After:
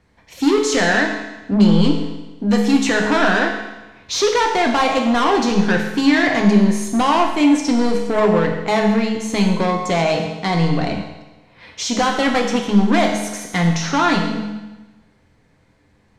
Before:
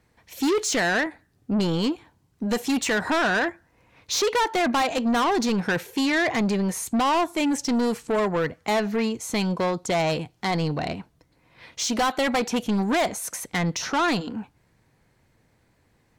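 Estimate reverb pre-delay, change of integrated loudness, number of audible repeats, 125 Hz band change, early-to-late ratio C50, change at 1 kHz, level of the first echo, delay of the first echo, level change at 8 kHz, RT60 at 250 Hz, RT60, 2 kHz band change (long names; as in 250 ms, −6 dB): 5 ms, +7.0 dB, no echo audible, +9.5 dB, 5.0 dB, +6.0 dB, no echo audible, no echo audible, +2.5 dB, 1.1 s, 1.1 s, +6.0 dB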